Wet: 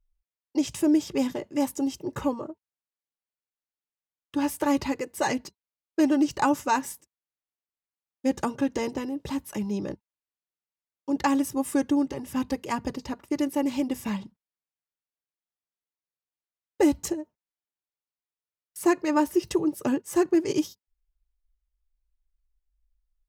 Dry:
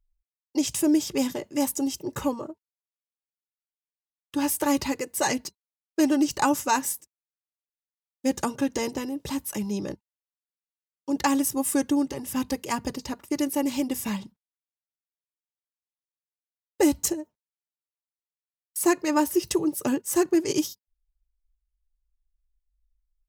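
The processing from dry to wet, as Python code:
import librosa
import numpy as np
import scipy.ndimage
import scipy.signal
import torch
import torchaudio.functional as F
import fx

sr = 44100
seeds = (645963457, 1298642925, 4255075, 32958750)

y = fx.high_shelf(x, sr, hz=4800.0, db=-11.5)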